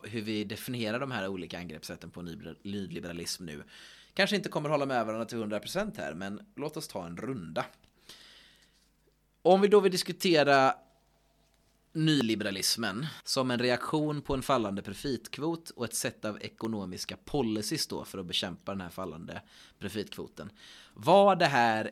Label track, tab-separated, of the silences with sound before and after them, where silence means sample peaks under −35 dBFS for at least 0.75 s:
8.100000	9.450000	silence
10.730000	11.960000	silence